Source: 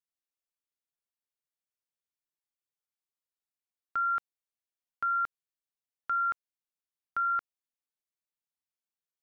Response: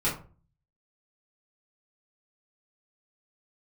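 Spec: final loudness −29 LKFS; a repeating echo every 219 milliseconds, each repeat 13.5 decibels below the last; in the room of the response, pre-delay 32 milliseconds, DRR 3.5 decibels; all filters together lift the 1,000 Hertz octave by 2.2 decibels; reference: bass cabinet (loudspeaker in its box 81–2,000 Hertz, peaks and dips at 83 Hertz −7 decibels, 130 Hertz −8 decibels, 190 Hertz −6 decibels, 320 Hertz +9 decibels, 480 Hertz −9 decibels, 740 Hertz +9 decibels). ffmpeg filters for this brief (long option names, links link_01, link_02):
-filter_complex "[0:a]equalizer=frequency=1000:width_type=o:gain=4,aecho=1:1:219|438:0.211|0.0444,asplit=2[link_01][link_02];[1:a]atrim=start_sample=2205,adelay=32[link_03];[link_02][link_03]afir=irnorm=-1:irlink=0,volume=-13.5dB[link_04];[link_01][link_04]amix=inputs=2:normalize=0,highpass=frequency=81:width=0.5412,highpass=frequency=81:width=1.3066,equalizer=frequency=83:width_type=q:width=4:gain=-7,equalizer=frequency=130:width_type=q:width=4:gain=-8,equalizer=frequency=190:width_type=q:width=4:gain=-6,equalizer=frequency=320:width_type=q:width=4:gain=9,equalizer=frequency=480:width_type=q:width=4:gain=-9,equalizer=frequency=740:width_type=q:width=4:gain=9,lowpass=frequency=2000:width=0.5412,lowpass=frequency=2000:width=1.3066,volume=-2dB"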